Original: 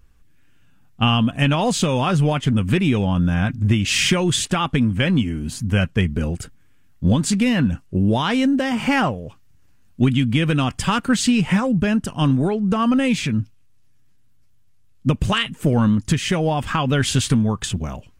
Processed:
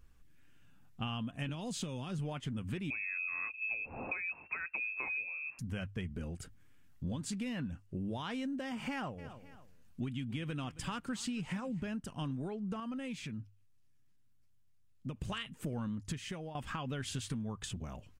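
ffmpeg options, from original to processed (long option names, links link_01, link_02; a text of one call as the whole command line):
ffmpeg -i in.wav -filter_complex "[0:a]asettb=1/sr,asplit=3[link_01][link_02][link_03];[link_01]atrim=end=1.494[link_04];[link_02]atrim=start=1.49:end=2.19,asetpts=PTS-STARTPTS,afade=type=in:duration=0.004:curve=qsin,afade=type=out:start_time=0.696:duration=0.004:curve=qsin,acrossover=split=390|3000[link_05][link_06][link_07];[link_06]acompressor=threshold=-28dB:ratio=6:attack=3.2:release=140:knee=2.83:detection=peak[link_08];[link_05][link_08][link_07]amix=inputs=3:normalize=0[link_09];[link_03]atrim=start=2.186[link_10];[link_04][link_09]acrossfade=duration=0.004:curve1=hsin:curve2=qsin[link_11];[link_11][link_10]acrossfade=duration=0.004:curve1=qsin:curve2=hsin,asettb=1/sr,asplit=3[link_12][link_13][link_14];[link_12]atrim=end=2.904[link_15];[link_13]atrim=start=2.9:end=5.59,asetpts=PTS-STARTPTS,afade=type=in:duration=0.004:curve=qsin,afade=type=out:start_time=2.686:duration=0.004:curve=qsin,lowpass=frequency=2300:width_type=q:width=0.5098,lowpass=frequency=2300:width_type=q:width=0.6013,lowpass=frequency=2300:width_type=q:width=0.9,lowpass=frequency=2300:width_type=q:width=2.563,afreqshift=-2700[link_16];[link_14]atrim=start=5.586[link_17];[link_15][link_16]acrossfade=duration=0.004:curve1=hsin:curve2=qsin[link_18];[link_18][link_17]acrossfade=duration=0.004:curve1=qsin:curve2=hsin,asplit=3[link_19][link_20][link_21];[link_19]afade=type=out:start_time=9.17:duration=0.02[link_22];[link_20]aecho=1:1:272|544:0.0891|0.0196,afade=type=in:start_time=9.17:duration=0.02,afade=type=out:start_time=11.87:duration=0.02[link_23];[link_21]afade=type=in:start_time=11.87:duration=0.02[link_24];[link_22][link_23][link_24]amix=inputs=3:normalize=0,asplit=4[link_25][link_26][link_27][link_28];[link_25]atrim=end=12.802[link_29];[link_26]atrim=start=12.798:end=15.162,asetpts=PTS-STARTPTS,volume=-6dB[link_30];[link_27]atrim=start=15.158:end=16.55,asetpts=PTS-STARTPTS,afade=type=out:start_time=0.942:duration=0.45:silence=0.149624[link_31];[link_28]atrim=start=16.55,asetpts=PTS-STARTPTS,afade=type=in:duration=0.004:curve=hsin:silence=0.149624[link_32];[link_29][link_30]acrossfade=duration=0.004:curve1=hsin:curve2=hsin[link_33];[link_31][link_32]concat=n=2:v=0:a=1[link_34];[link_33][link_34]acrossfade=duration=0.004:curve1=hsin:curve2=hsin,bandreject=frequency=50:width_type=h:width=6,bandreject=frequency=100:width_type=h:width=6,acompressor=threshold=-36dB:ratio=2.5,volume=-7dB" out.wav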